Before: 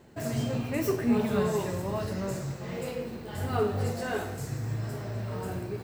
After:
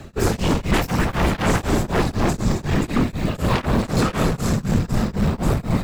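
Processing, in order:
high-shelf EQ 11,000 Hz −9 dB
notch filter 1,700 Hz, Q 12
echo with a time of its own for lows and highs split 420 Hz, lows 430 ms, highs 273 ms, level −10.5 dB
random phases in short frames
in parallel at −4.5 dB: sine wavefolder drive 17 dB, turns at −12.5 dBFS
on the sum: frequency shifter −250 Hz
tremolo along a rectified sine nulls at 4 Hz
level +2 dB

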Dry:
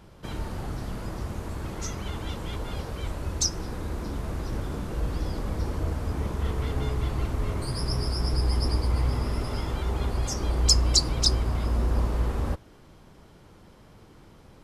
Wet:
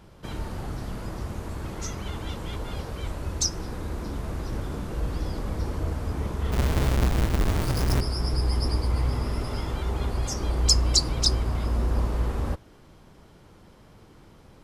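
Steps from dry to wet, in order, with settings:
0:06.52–0:08.01: each half-wave held at its own peak

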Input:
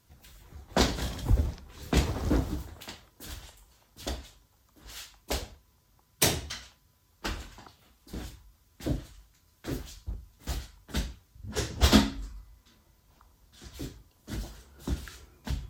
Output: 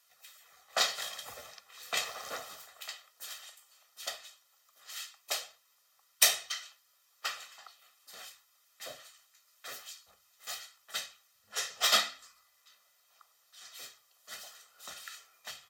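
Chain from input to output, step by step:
high-pass filter 1,100 Hz 12 dB per octave
comb filter 1.6 ms, depth 76%

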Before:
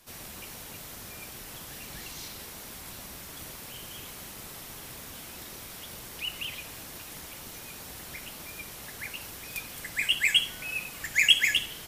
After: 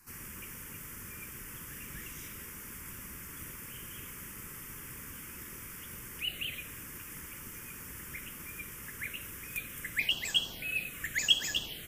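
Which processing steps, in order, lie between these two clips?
phaser swept by the level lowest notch 590 Hz, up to 2,200 Hz, full sweep at −22.5 dBFS

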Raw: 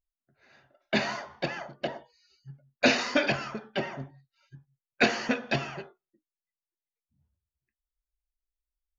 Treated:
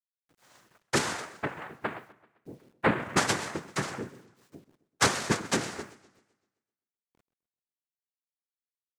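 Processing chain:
0:01.40–0:03.16: Butterworth low-pass 980 Hz
cochlear-implant simulation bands 3
bit reduction 11 bits
feedback echo with a swinging delay time 129 ms, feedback 46%, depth 178 cents, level −18 dB

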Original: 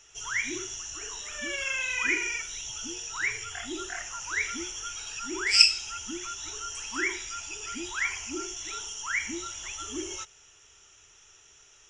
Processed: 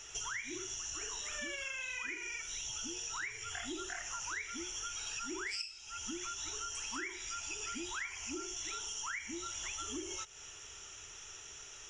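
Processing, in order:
downward compressor 16 to 1, threshold −44 dBFS, peak gain reduction 33 dB
level +6 dB

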